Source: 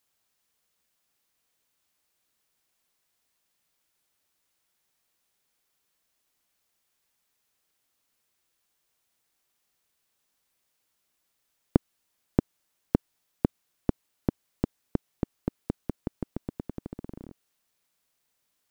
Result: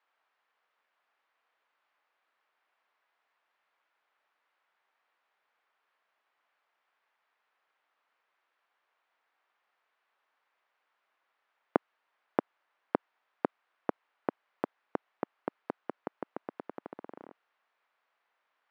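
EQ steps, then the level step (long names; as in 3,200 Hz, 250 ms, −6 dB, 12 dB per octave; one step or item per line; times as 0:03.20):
high-pass filter 850 Hz 12 dB per octave
low-pass filter 1,600 Hz 12 dB per octave
high-frequency loss of the air 97 metres
+11.5 dB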